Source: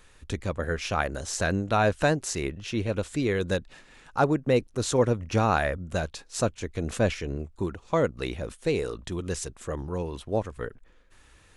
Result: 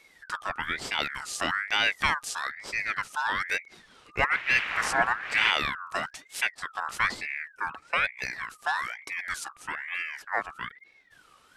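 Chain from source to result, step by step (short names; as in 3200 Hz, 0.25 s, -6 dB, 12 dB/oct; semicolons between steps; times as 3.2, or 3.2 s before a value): 4.31–5.5 wind noise 620 Hz -21 dBFS; ring modulator with a swept carrier 1700 Hz, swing 30%, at 1.1 Hz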